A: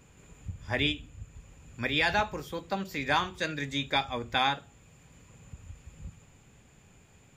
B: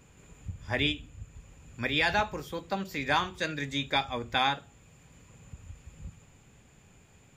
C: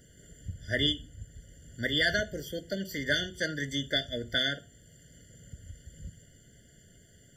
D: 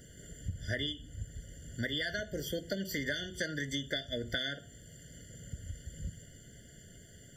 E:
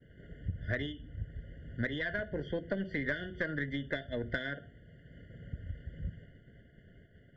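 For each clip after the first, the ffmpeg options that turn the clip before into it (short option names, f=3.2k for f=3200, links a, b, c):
-af anull
-af "highshelf=f=3.2k:g=8.5,afftfilt=real='re*eq(mod(floor(b*sr/1024/710),2),0)':imag='im*eq(mod(floor(b*sr/1024/710),2),0)':win_size=1024:overlap=0.75"
-af "acompressor=threshold=-35dB:ratio=16,volume=3.5dB"
-af "lowpass=f=2.4k:w=0.5412,lowpass=f=2.4k:w=1.3066,aeval=exprs='0.1*(cos(1*acos(clip(val(0)/0.1,-1,1)))-cos(1*PI/2))+0.00708*(cos(4*acos(clip(val(0)/0.1,-1,1)))-cos(4*PI/2))':c=same,agate=range=-33dB:threshold=-50dB:ratio=3:detection=peak,volume=1.5dB"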